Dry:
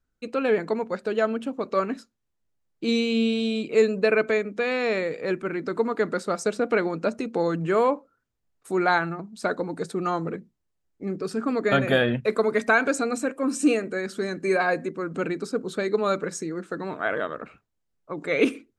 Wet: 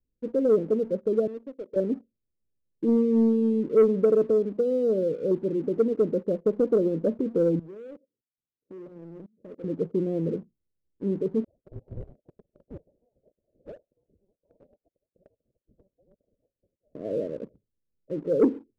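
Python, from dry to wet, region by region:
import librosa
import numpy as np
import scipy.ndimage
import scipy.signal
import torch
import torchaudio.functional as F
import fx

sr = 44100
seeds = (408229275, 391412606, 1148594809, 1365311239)

y = fx.chain(x, sr, fx.highpass(hz=530.0, slope=12),
    fx.peak_eq(hz=1200.0, db=-11.0, octaves=1.9),
    fx.clip_hard(threshold_db=-31.5), at=(1.27, 1.76))
y = fx.chain(y, sr, fx.median_filter(points=41),
    fx.level_steps(step_db=20),
    fx.highpass(hz=280.0, slope=6), at=(7.59, 9.64))
y = fx.chain(y, sr, fx.chopper(hz=9.5, depth_pct=60, duty_pct=65),
    fx.clip_hard(threshold_db=-14.5),
    fx.freq_invert(carrier_hz=3300), at=(11.44, 16.95))
y = scipy.signal.sosfilt(scipy.signal.butter(12, 580.0, 'lowpass', fs=sr, output='sos'), y)
y = fx.leveller(y, sr, passes=1)
y = y * 10.0 ** (-1.0 / 20.0)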